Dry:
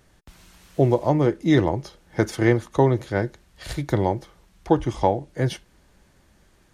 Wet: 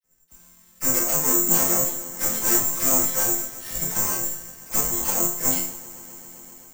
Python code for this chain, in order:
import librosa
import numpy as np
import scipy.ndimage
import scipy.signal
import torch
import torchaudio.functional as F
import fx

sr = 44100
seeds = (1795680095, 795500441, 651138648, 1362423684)

p1 = fx.notch(x, sr, hz=810.0, q=23.0)
p2 = fx.fold_sine(p1, sr, drive_db=20, ceiling_db=1.5)
p3 = p1 + (p2 * librosa.db_to_amplitude(-5.5))
p4 = fx.dispersion(p3, sr, late='lows', ms=41.0, hz=1500.0)
p5 = fx.tube_stage(p4, sr, drive_db=14.0, bias=0.5)
p6 = fx.air_absorb(p5, sr, metres=280.0)
p7 = fx.resonator_bank(p6, sr, root=53, chord='major', decay_s=0.61)
p8 = fx.echo_swell(p7, sr, ms=131, loudest=5, wet_db=-17.5)
p9 = (np.kron(p8[::6], np.eye(6)[0]) * 6)[:len(p8)]
p10 = fx.band_widen(p9, sr, depth_pct=70)
y = p10 * librosa.db_to_amplitude(9.0)